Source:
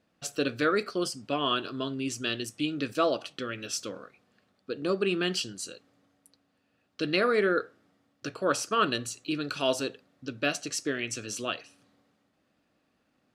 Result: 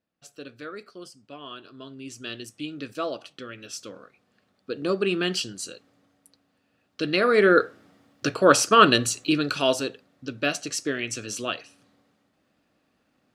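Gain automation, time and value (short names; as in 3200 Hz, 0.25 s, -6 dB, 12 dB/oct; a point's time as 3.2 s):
1.55 s -12.5 dB
2.34 s -4 dB
3.73 s -4 dB
4.73 s +3 dB
7.19 s +3 dB
7.62 s +10.5 dB
9.16 s +10.5 dB
9.84 s +3 dB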